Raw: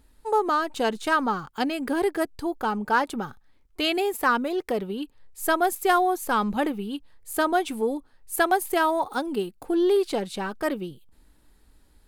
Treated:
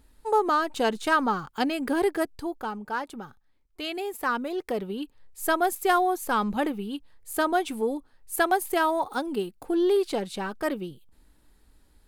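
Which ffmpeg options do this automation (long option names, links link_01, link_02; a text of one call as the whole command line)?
ffmpeg -i in.wav -af "volume=7dB,afade=type=out:start_time=2.09:duration=0.71:silence=0.375837,afade=type=in:start_time=3.88:duration=1.08:silence=0.446684" out.wav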